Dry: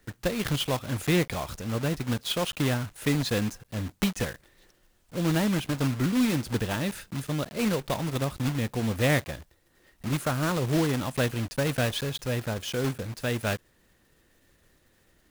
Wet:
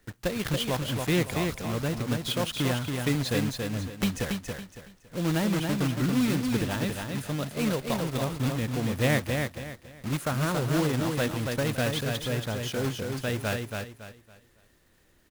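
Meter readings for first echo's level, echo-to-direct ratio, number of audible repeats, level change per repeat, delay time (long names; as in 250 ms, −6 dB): −4.5 dB, −4.0 dB, 3, −10.5 dB, 279 ms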